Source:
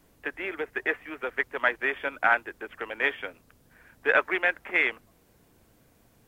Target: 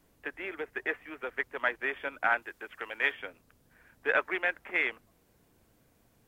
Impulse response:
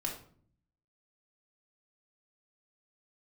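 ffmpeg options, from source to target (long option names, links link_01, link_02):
-filter_complex "[0:a]asettb=1/sr,asplit=3[link_01][link_02][link_03];[link_01]atrim=end=2.424[link_04];[link_02]atrim=start=2.42:end=3.12,asetpts=PTS-STARTPTS,afade=type=in:duration=0.004:curve=qsin,afade=type=out:start_time=0.696:duration=0.004:curve=qsin,tiltshelf=frequency=810:gain=-4[link_05];[link_03]atrim=start=3.116[link_06];[link_04][link_05]acrossfade=duration=0.004:curve1=hsin:curve2=qsin[link_07];[link_07][link_06]acrossfade=duration=0.004:curve1=qsin:curve2=hsin,volume=-5dB"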